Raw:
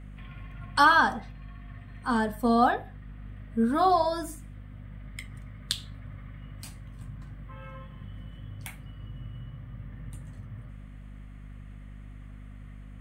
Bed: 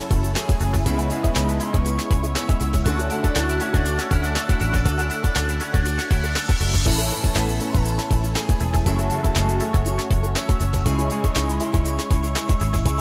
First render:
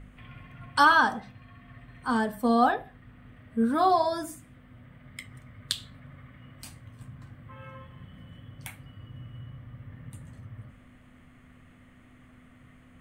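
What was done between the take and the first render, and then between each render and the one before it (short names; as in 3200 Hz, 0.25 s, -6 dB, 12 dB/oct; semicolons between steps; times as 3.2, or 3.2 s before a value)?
de-hum 50 Hz, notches 4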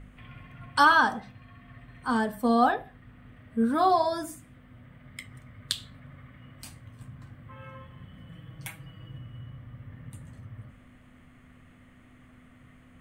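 8.29–9.18 comb 6.2 ms, depth 75%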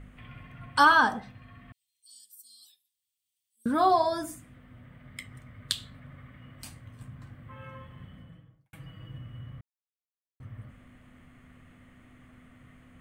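1.72–3.66 inverse Chebyshev high-pass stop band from 1600 Hz, stop band 60 dB; 8.02–8.73 studio fade out; 9.61–10.4 mute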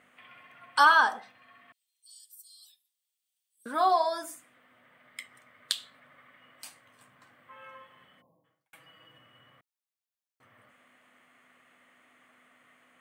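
8.21–8.45 spectral delete 1100–10000 Hz; HPF 580 Hz 12 dB/oct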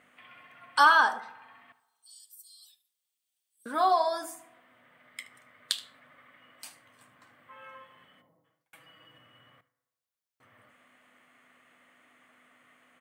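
echo 76 ms -18.5 dB; FDN reverb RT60 1.2 s, low-frequency decay 0.75×, high-frequency decay 0.35×, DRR 17 dB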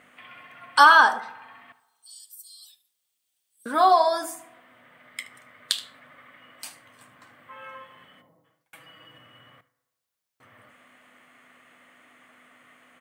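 gain +6.5 dB; limiter -3 dBFS, peak gain reduction 2 dB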